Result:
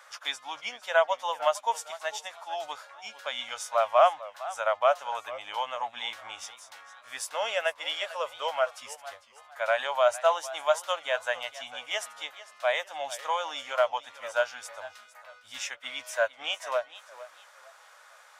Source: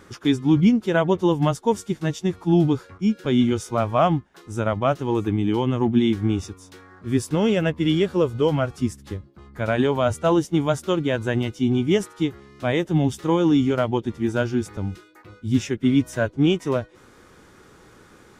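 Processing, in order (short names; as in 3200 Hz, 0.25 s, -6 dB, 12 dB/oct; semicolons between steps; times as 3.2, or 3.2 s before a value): elliptic high-pass 590 Hz, stop band 40 dB; warbling echo 0.453 s, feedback 30%, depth 135 cents, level -16.5 dB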